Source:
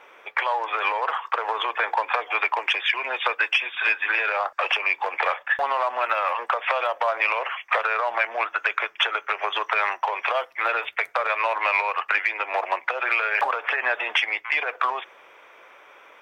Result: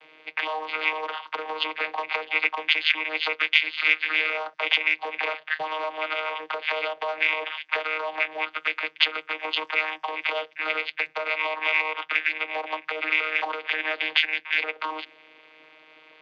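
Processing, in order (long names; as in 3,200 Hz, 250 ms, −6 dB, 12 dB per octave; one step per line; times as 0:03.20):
low-pass filter 5,100 Hz 24 dB per octave
high shelf with overshoot 2,000 Hz +10.5 dB, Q 1.5
channel vocoder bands 16, saw 156 Hz
level −7.5 dB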